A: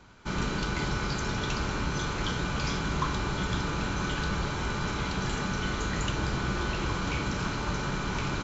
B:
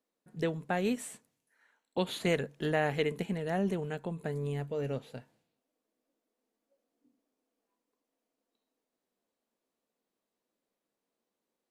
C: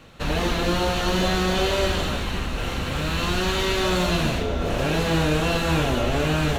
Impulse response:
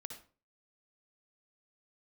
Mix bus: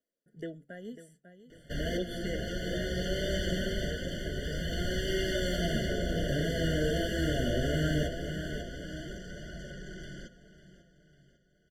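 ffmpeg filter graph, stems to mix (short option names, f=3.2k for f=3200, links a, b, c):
-filter_complex "[0:a]aecho=1:1:5.5:0.68,asoftclip=type=tanh:threshold=-30dB,adelay=1850,volume=-5dB,asplit=2[a][b];[b]volume=-15.5dB[c];[1:a]aeval=exprs='val(0)*pow(10,-23*if(lt(mod(0.52*n/s,1),2*abs(0.52)/1000),1-mod(0.52*n/s,1)/(2*abs(0.52)/1000),(mod(0.52*n/s,1)-2*abs(0.52)/1000)/(1-2*abs(0.52)/1000))/20)':c=same,volume=1.5dB,asplit=3[d][e][f];[e]volume=-11.5dB[g];[2:a]adelay=1500,volume=-5dB,asplit=3[h][i][j];[i]volume=-8.5dB[k];[j]volume=-6dB[l];[f]apad=whole_len=356729[m];[h][m]sidechaincompress=threshold=-39dB:ratio=8:attack=16:release=979[n];[3:a]atrim=start_sample=2205[o];[k][o]afir=irnorm=-1:irlink=0[p];[c][g][l]amix=inputs=3:normalize=0,aecho=0:1:547|1094|1641|2188|2735|3282|3829:1|0.48|0.23|0.111|0.0531|0.0255|0.0122[q];[a][d][n][p][q]amix=inputs=5:normalize=0,flanger=delay=1.3:depth=8.3:regen=67:speed=0.21:shape=triangular,afftfilt=real='re*eq(mod(floor(b*sr/1024/710),2),0)':imag='im*eq(mod(floor(b*sr/1024/710),2),0)':win_size=1024:overlap=0.75"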